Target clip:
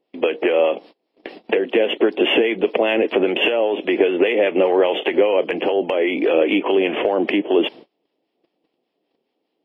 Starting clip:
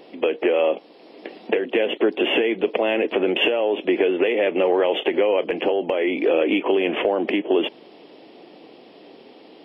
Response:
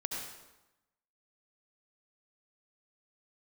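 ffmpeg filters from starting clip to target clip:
-filter_complex "[0:a]agate=range=-30dB:threshold=-40dB:ratio=16:detection=peak,acrossover=split=820[link_01][link_02];[link_01]aeval=exprs='val(0)*(1-0.5/2+0.5/2*cos(2*PI*5*n/s))':channel_layout=same[link_03];[link_02]aeval=exprs='val(0)*(1-0.5/2-0.5/2*cos(2*PI*5*n/s))':channel_layout=same[link_04];[link_03][link_04]amix=inputs=2:normalize=0,volume=5dB"

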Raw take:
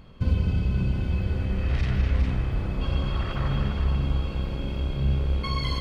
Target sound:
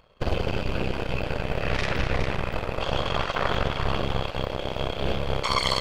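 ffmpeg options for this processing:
ffmpeg -i in.wav -af "aeval=exprs='0.282*(cos(1*acos(clip(val(0)/0.282,-1,1)))-cos(1*PI/2))+0.0126*(cos(3*acos(clip(val(0)/0.282,-1,1)))-cos(3*PI/2))+0.01*(cos(5*acos(clip(val(0)/0.282,-1,1)))-cos(5*PI/2))+0.112*(cos(6*acos(clip(val(0)/0.282,-1,1)))-cos(6*PI/2))+0.0251*(cos(7*acos(clip(val(0)/0.282,-1,1)))-cos(7*PI/2))':channel_layout=same,lowshelf=frequency=380:width_type=q:width=1.5:gain=-10,volume=2.5dB" out.wav

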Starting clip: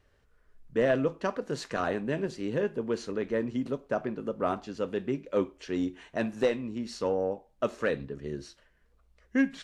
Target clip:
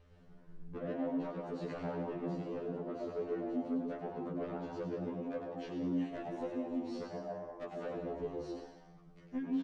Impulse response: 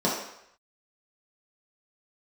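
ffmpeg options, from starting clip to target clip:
-filter_complex "[0:a]aemphasis=mode=reproduction:type=50fm,acrossover=split=2900[link_01][link_02];[link_02]acompressor=threshold=-60dB:ratio=4:attack=1:release=60[link_03];[link_01][link_03]amix=inputs=2:normalize=0,equalizer=frequency=1700:width=2:gain=-6.5,acompressor=threshold=-39dB:ratio=12,asoftclip=type=tanh:threshold=-39.5dB,asplit=7[link_04][link_05][link_06][link_07][link_08][link_09][link_10];[link_05]adelay=99,afreqshift=140,volume=-7dB[link_11];[link_06]adelay=198,afreqshift=280,volume=-13.6dB[link_12];[link_07]adelay=297,afreqshift=420,volume=-20.1dB[link_13];[link_08]adelay=396,afreqshift=560,volume=-26.7dB[link_14];[link_09]adelay=495,afreqshift=700,volume=-33.2dB[link_15];[link_10]adelay=594,afreqshift=840,volume=-39.8dB[link_16];[link_04][link_11][link_12][link_13][link_14][link_15][link_16]amix=inputs=7:normalize=0,asplit=2[link_17][link_18];[1:a]atrim=start_sample=2205,lowshelf=frequency=180:gain=12,adelay=127[link_19];[link_18][link_19]afir=irnorm=-1:irlink=0,volume=-20dB[link_20];[link_17][link_20]amix=inputs=2:normalize=0,afftfilt=real='re*2*eq(mod(b,4),0)':imag='im*2*eq(mod(b,4),0)':win_size=2048:overlap=0.75,volume=5.5dB"

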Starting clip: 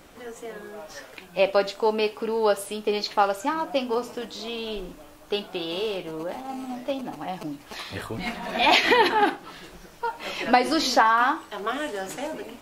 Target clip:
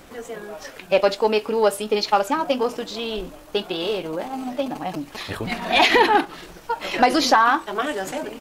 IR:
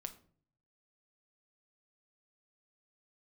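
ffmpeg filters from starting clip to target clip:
-af "atempo=1.5,acontrast=71,volume=-2dB"

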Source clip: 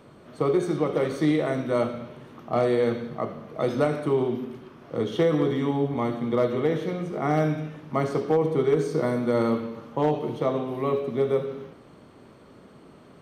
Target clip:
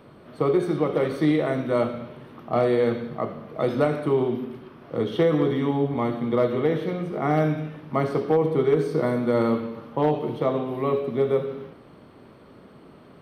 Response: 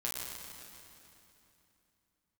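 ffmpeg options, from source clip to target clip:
-af "equalizer=frequency=6900:width=2.3:gain=-13,volume=1.5dB"

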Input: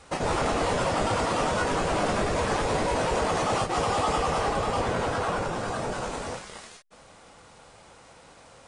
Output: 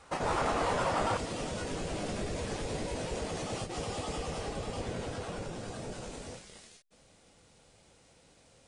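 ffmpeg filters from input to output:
ffmpeg -i in.wav -af "asetnsamples=nb_out_samples=441:pad=0,asendcmd='1.17 equalizer g -11.5',equalizer=frequency=1100:width=0.85:gain=4,volume=-6.5dB" out.wav

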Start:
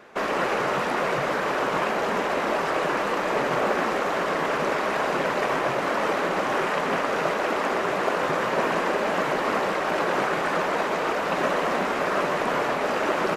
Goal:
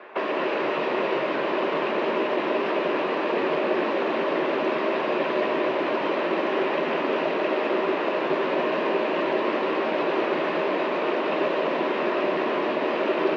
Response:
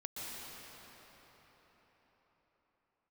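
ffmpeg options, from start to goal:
-filter_complex "[0:a]highpass=frequency=200:width=0.5412,highpass=frequency=200:width=1.3066,equalizer=frequency=220:width_type=q:width=4:gain=-4,equalizer=frequency=360:width_type=q:width=4:gain=7,equalizer=frequency=610:width_type=q:width=4:gain=7,equalizer=frequency=1000:width_type=q:width=4:gain=8,equalizer=frequency=1800:width_type=q:width=4:gain=4,equalizer=frequency=2600:width_type=q:width=4:gain=6,lowpass=frequency=3800:width=0.5412,lowpass=frequency=3800:width=1.3066,asplit=2[link_01][link_02];[1:a]atrim=start_sample=2205,adelay=13[link_03];[link_02][link_03]afir=irnorm=-1:irlink=0,volume=-2dB[link_04];[link_01][link_04]amix=inputs=2:normalize=0,acrossover=split=420|3000[link_05][link_06][link_07];[link_06]acompressor=threshold=-29dB:ratio=6[link_08];[link_05][link_08][link_07]amix=inputs=3:normalize=0"

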